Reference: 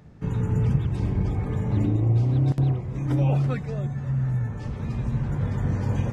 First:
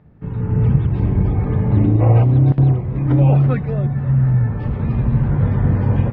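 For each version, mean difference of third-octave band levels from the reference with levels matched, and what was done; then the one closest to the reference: 3.0 dB: time-frequency box 2.00–2.24 s, 440–3000 Hz +12 dB; level rider gain up to 10.5 dB; distance through air 420 m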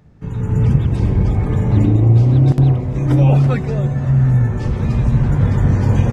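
1.5 dB: frequency-shifting echo 174 ms, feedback 60%, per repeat +120 Hz, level -20 dB; level rider gain up to 12 dB; bass shelf 71 Hz +5.5 dB; trim -1 dB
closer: second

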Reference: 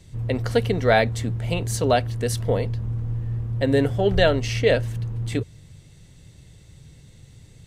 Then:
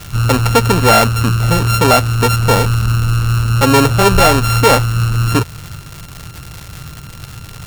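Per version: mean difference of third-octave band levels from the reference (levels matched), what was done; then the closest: 10.5 dB: sorted samples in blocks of 32 samples; in parallel at +2.5 dB: compression, threshold -27 dBFS, peak gain reduction 13.5 dB; on the sum: sine folder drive 5 dB, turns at -2.5 dBFS; crackle 280 per s -19 dBFS; trim -1 dB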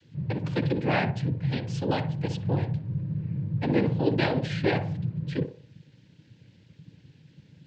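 5.5 dB: high-order bell 810 Hz -8 dB; noise-vocoded speech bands 8; distance through air 190 m; on a send: band-passed feedback delay 61 ms, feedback 43%, band-pass 670 Hz, level -7 dB; on the sum: trim -2.5 dB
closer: second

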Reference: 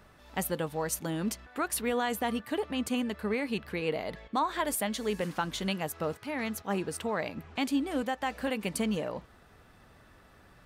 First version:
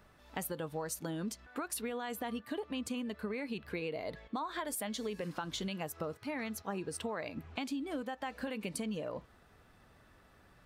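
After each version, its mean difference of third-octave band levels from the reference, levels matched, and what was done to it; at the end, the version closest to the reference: 2.5 dB: spectral noise reduction 6 dB; peak limiter -22.5 dBFS, peak gain reduction 3.5 dB; compression, threshold -36 dBFS, peak gain reduction 9.5 dB; trim +1 dB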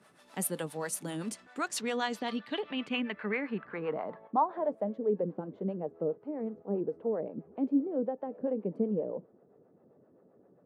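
10.5 dB: harmonic tremolo 7.6 Hz, depth 70%, crossover 460 Hz; low-pass sweep 10 kHz -> 470 Hz, 1.26–5.07 s; high-pass 150 Hz 24 dB/octave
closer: first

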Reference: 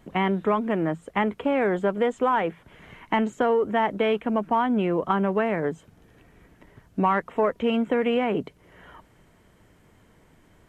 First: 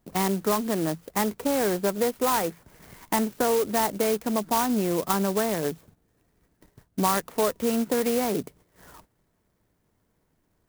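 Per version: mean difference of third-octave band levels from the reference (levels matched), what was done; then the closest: 9.0 dB: gate -50 dBFS, range -12 dB; sampling jitter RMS 0.084 ms; trim -1.5 dB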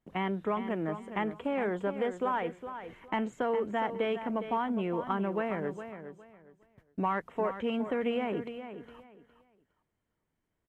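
4.0 dB: gate -48 dBFS, range -18 dB; feedback delay 411 ms, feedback 24%, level -10.5 dB; trim -8.5 dB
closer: second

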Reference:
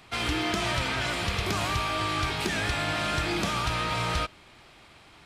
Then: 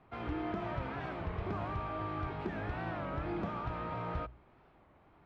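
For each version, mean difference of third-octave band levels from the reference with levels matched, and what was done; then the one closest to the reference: 9.5 dB: low-pass 1.1 kHz 12 dB/octave; hum notches 60/120 Hz; warped record 33 1/3 rpm, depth 160 cents; trim -6.5 dB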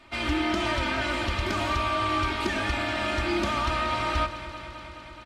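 5.0 dB: low-pass 3 kHz 6 dB/octave; comb 3.3 ms, depth 98%; echo whose repeats swap between lows and highs 106 ms, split 910 Hz, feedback 88%, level -12 dB; trim -1.5 dB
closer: second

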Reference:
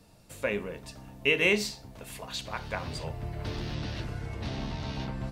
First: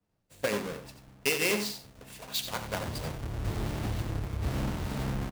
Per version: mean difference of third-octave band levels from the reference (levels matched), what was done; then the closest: 6.0 dB: square wave that keeps the level; compression 6:1, threshold -27 dBFS, peak gain reduction 10 dB; delay 91 ms -8 dB; three bands expanded up and down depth 100%; trim -2 dB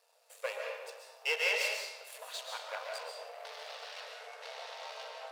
14.5 dB: partial rectifier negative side -12 dB; algorithmic reverb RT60 0.98 s, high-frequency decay 0.85×, pre-delay 95 ms, DRR 1 dB; in parallel at -11 dB: crossover distortion -40 dBFS; on the sum: brick-wall FIR high-pass 440 Hz; trim -4.5 dB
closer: first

